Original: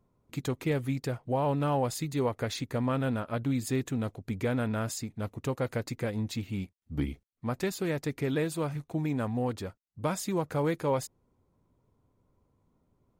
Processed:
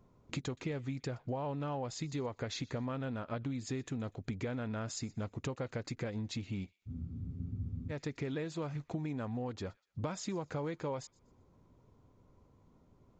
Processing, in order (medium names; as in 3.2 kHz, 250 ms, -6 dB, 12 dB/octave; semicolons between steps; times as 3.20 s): compression 6:1, threshold -42 dBFS, peak gain reduction 17 dB; feedback echo behind a high-pass 122 ms, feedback 32%, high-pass 1.5 kHz, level -23 dB; resampled via 16 kHz; spectral freeze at 6.90 s, 1.00 s; trim +6 dB